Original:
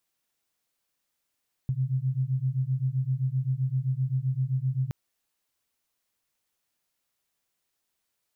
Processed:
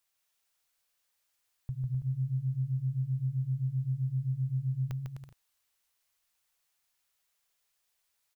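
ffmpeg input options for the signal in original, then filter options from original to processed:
-f lavfi -i "aevalsrc='0.0422*(sin(2*PI*127*t)+sin(2*PI*134.7*t))':d=3.22:s=44100"
-filter_complex "[0:a]equalizer=f=230:w=0.64:g=-12.5,asplit=2[a][b];[b]aecho=0:1:150|255|328.5|380|416:0.631|0.398|0.251|0.158|0.1[c];[a][c]amix=inputs=2:normalize=0"

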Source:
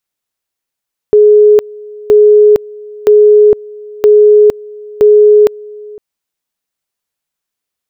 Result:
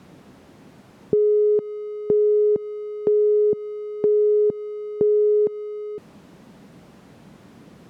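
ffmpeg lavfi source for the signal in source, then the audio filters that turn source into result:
-f lavfi -i "aevalsrc='pow(10,(-1.5-24*gte(mod(t,0.97),0.46))/20)*sin(2*PI*420*t)':d=4.85:s=44100"
-af "aeval=exprs='val(0)+0.5*0.0944*sgn(val(0))':c=same,acompressor=threshold=-7dB:ratio=6,bandpass=f=190:t=q:w=1.5:csg=0"

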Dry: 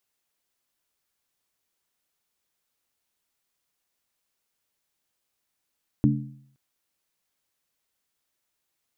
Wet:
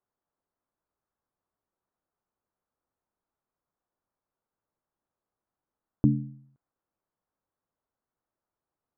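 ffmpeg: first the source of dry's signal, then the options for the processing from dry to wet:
-f lavfi -i "aevalsrc='0.126*pow(10,-3*t/0.67)*sin(2*PI*136*t)+0.126*pow(10,-3*t/0.531)*sin(2*PI*216.8*t)+0.126*pow(10,-3*t/0.458)*sin(2*PI*290.5*t)':d=0.52:s=44100"
-af "lowpass=f=1.3k:w=0.5412,lowpass=f=1.3k:w=1.3066"

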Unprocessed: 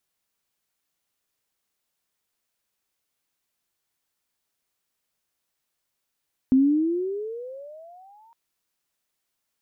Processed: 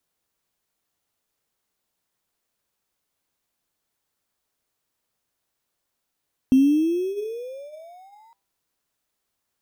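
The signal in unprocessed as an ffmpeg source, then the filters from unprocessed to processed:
-f lavfi -i "aevalsrc='pow(10,(-13-39*t/1.81)/20)*sin(2*PI*256*1.81/(22.5*log(2)/12)*(exp(22.5*log(2)/12*t/1.81)-1))':d=1.81:s=44100"
-filter_complex "[0:a]bandreject=f=197.9:t=h:w=4,bandreject=f=395.8:t=h:w=4,bandreject=f=593.7:t=h:w=4,bandreject=f=791.6:t=h:w=4,bandreject=f=989.5:t=h:w=4,asplit=2[a][b];[b]acrusher=samples=15:mix=1:aa=0.000001,volume=-10.5dB[c];[a][c]amix=inputs=2:normalize=0"

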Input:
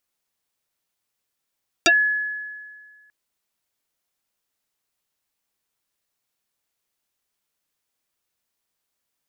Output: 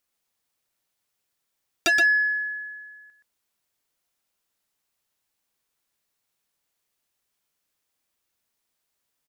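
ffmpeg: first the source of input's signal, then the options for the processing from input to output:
-f lavfi -i "aevalsrc='0.282*pow(10,-3*t/1.77)*sin(2*PI*1700*t+6.6*pow(10,-3*t/0.1)*sin(2*PI*0.6*1700*t))':d=1.24:s=44100"
-filter_complex "[0:a]asoftclip=type=tanh:threshold=-17dB,asplit=2[a][b];[b]aecho=0:1:123:0.501[c];[a][c]amix=inputs=2:normalize=0"

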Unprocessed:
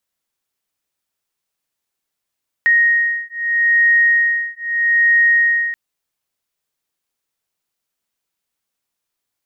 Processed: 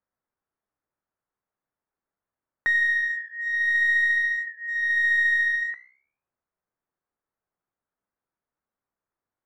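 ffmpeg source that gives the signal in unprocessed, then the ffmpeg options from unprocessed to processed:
-f lavfi -i "aevalsrc='0.178*(sin(2*PI*1870*t)+sin(2*PI*1870.79*t))':d=3.08:s=44100"
-filter_complex "[0:a]lowpass=f=1.6k:w=0.5412,lowpass=f=1.6k:w=1.3066,asplit=2[a][b];[b]aeval=exprs='clip(val(0),-1,0.0447)':c=same,volume=-7.5dB[c];[a][c]amix=inputs=2:normalize=0,flanger=delay=9.8:depth=8.4:regen=-82:speed=0.45:shape=triangular"

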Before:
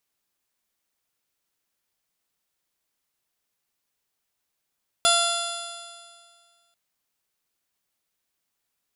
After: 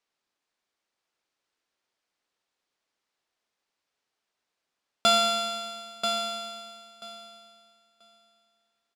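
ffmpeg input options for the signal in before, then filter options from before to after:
-f lavfi -i "aevalsrc='0.075*pow(10,-3*t/1.95)*sin(2*PI*685.28*t)+0.0841*pow(10,-3*t/1.95)*sin(2*PI*1372.24*t)+0.00944*pow(10,-3*t/1.95)*sin(2*PI*2062.57*t)+0.0376*pow(10,-3*t/1.95)*sin(2*PI*2757.92*t)+0.1*pow(10,-3*t/1.95)*sin(2*PI*3459.93*t)+0.0376*pow(10,-3*t/1.95)*sin(2*PI*4170.22*t)+0.0473*pow(10,-3*t/1.95)*sin(2*PI*4890.38*t)+0.0106*pow(10,-3*t/1.95)*sin(2*PI*5621.96*t)+0.0075*pow(10,-3*t/1.95)*sin(2*PI*6366.45*t)+0.0562*pow(10,-3*t/1.95)*sin(2*PI*7125.32*t)+0.015*pow(10,-3*t/1.95)*sin(2*PI*7899.97*t)+0.00841*pow(10,-3*t/1.95)*sin(2*PI*8691.77*t)+0.0224*pow(10,-3*t/1.95)*sin(2*PI*9502.01*t)+0.0562*pow(10,-3*t/1.95)*sin(2*PI*10331.95*t)':d=1.69:s=44100"
-filter_complex "[0:a]highpass=280,lowpass=5.3k,aecho=1:1:985|1970|2955:0.447|0.0715|0.0114,asplit=2[a][b];[b]acrusher=samples=12:mix=1:aa=0.000001,volume=-11.5dB[c];[a][c]amix=inputs=2:normalize=0"

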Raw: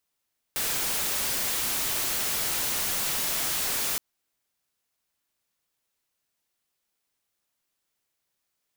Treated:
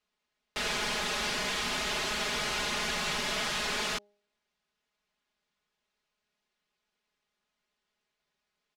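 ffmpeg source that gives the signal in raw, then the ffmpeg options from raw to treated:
-f lavfi -i "anoisesrc=c=white:a=0.0689:d=3.42:r=44100:seed=1"
-af "lowpass=4k,aecho=1:1:4.8:0.98,bandreject=f=205.1:t=h:w=4,bandreject=f=410.2:t=h:w=4,bandreject=f=615.3:t=h:w=4,bandreject=f=820.4:t=h:w=4"

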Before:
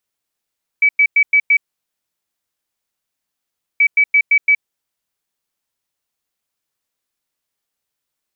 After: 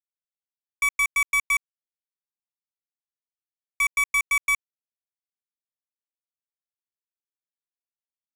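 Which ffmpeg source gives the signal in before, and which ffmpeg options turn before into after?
-f lavfi -i "aevalsrc='0.398*sin(2*PI*2290*t)*clip(min(mod(mod(t,2.98),0.17),0.07-mod(mod(t,2.98),0.17))/0.005,0,1)*lt(mod(t,2.98),0.85)':d=5.96:s=44100"
-af "aresample=8000,asoftclip=type=tanh:threshold=-18.5dB,aresample=44100,equalizer=f=2k:t=o:w=2.8:g=-2.5,acrusher=bits=3:mix=0:aa=0.5"

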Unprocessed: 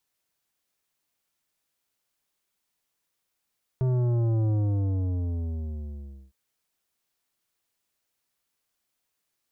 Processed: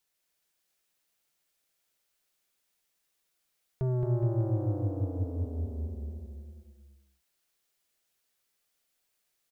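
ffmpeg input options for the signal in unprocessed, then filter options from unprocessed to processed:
-f lavfi -i "aevalsrc='0.075*clip((2.51-t)/1.82,0,1)*tanh(3.55*sin(2*PI*130*2.51/log(65/130)*(exp(log(65/130)*t/2.51)-1)))/tanh(3.55)':d=2.51:s=44100"
-filter_complex "[0:a]equalizer=f=100:t=o:w=0.67:g=-9,equalizer=f=250:t=o:w=0.67:g=-5,equalizer=f=1k:t=o:w=0.67:g=-4,asplit=2[a][b];[b]aecho=0:1:220|418|596.2|756.6|900.9:0.631|0.398|0.251|0.158|0.1[c];[a][c]amix=inputs=2:normalize=0"

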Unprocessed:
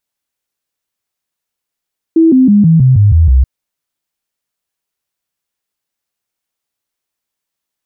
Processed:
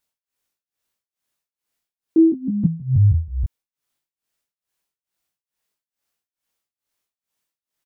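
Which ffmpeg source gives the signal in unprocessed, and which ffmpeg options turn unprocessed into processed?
-f lavfi -i "aevalsrc='0.668*clip(min(mod(t,0.16),0.16-mod(t,0.16))/0.005,0,1)*sin(2*PI*326*pow(2,-floor(t/0.16)/3)*mod(t,0.16))':d=1.28:s=44100"
-filter_complex "[0:a]alimiter=limit=-10dB:level=0:latency=1:release=165,tremolo=f=2.3:d=0.94,asplit=2[a][b];[b]adelay=22,volume=-3.5dB[c];[a][c]amix=inputs=2:normalize=0"

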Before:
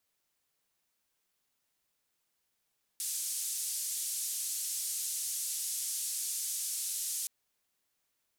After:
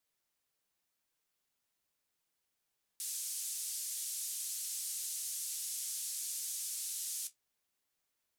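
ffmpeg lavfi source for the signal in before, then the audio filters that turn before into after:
-f lavfi -i "anoisesrc=c=white:d=4.27:r=44100:seed=1,highpass=f=6900,lowpass=f=10000,volume=-23.1dB"
-af "flanger=delay=6.1:depth=9.4:regen=-47:speed=0.88:shape=sinusoidal"

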